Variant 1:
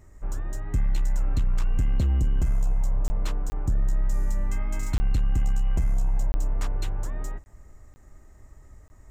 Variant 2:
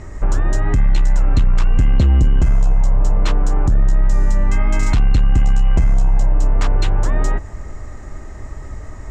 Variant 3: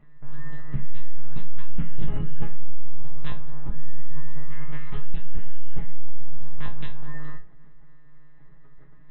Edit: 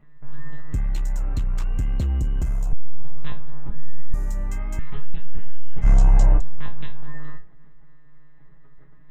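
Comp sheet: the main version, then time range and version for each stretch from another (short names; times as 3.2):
3
0.74–2.73 from 1
4.14–4.79 from 1
5.84–6.39 from 2, crossfade 0.06 s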